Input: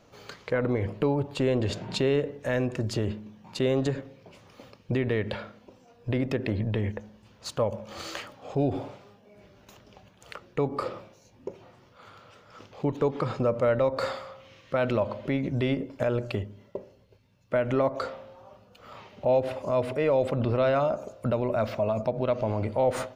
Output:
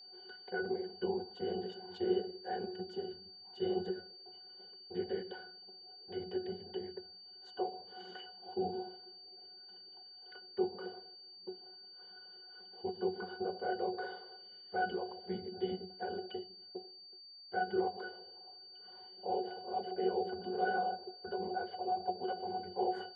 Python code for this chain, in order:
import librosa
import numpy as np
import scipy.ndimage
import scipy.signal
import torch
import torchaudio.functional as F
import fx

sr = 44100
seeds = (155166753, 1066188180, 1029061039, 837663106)

y = scipy.signal.sosfilt(scipy.signal.butter(4, 370.0, 'highpass', fs=sr, output='sos'), x)
y = fx.whisperise(y, sr, seeds[0])
y = fx.octave_resonator(y, sr, note='F#', decay_s=0.17)
y = y + 10.0 ** (-57.0 / 20.0) * np.sin(2.0 * np.pi * 4600.0 * np.arange(len(y)) / sr)
y = y * librosa.db_to_amplitude(5.0)